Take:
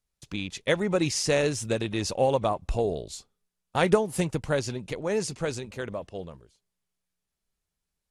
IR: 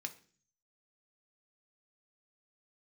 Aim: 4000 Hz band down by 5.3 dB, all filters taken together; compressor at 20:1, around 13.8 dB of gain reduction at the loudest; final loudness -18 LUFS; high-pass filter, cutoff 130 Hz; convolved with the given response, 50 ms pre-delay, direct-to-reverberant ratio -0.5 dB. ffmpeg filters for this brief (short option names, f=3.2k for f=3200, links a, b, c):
-filter_complex "[0:a]highpass=130,equalizer=f=4k:t=o:g=-7,acompressor=threshold=-28dB:ratio=20,asplit=2[a][b];[1:a]atrim=start_sample=2205,adelay=50[c];[b][c]afir=irnorm=-1:irlink=0,volume=2dB[d];[a][d]amix=inputs=2:normalize=0,volume=15dB"